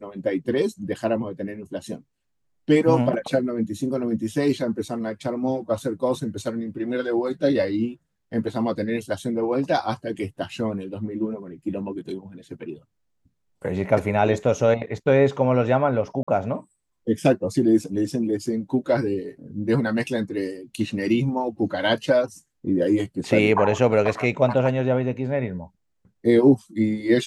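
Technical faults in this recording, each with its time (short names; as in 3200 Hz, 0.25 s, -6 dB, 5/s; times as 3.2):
16.23–16.27 gap 45 ms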